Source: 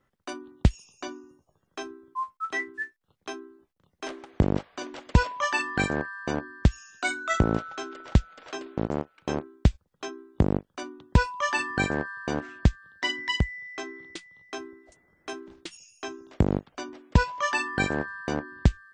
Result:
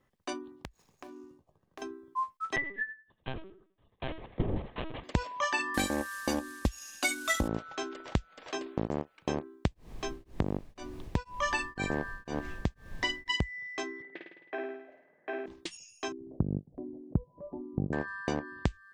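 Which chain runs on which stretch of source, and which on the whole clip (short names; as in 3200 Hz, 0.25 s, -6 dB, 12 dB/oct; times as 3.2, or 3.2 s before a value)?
0.56–1.82 median filter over 15 samples + compressor 16:1, threshold -42 dBFS
2.56–5.04 thinning echo 90 ms, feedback 18%, high-pass 220 Hz, level -11 dB + LPC vocoder at 8 kHz pitch kept
5.74–7.48 CVSD 64 kbps + high shelf 3600 Hz +9 dB + comb 3.6 ms, depth 78%
9.66–13.29 added noise brown -41 dBFS + beating tremolo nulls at 2 Hz
14.02–15.46 speaker cabinet 310–2200 Hz, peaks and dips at 310 Hz -4 dB, 620 Hz +5 dB, 1100 Hz -9 dB, 1700 Hz +6 dB + flutter echo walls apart 9.1 m, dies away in 0.81 s
16.12–17.93 Gaussian blur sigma 18 samples + bell 140 Hz +6 dB 1.3 oct + upward compressor, threshold -38 dBFS
whole clip: notch 1400 Hz, Q 5.8; compressor 6:1, threshold -26 dBFS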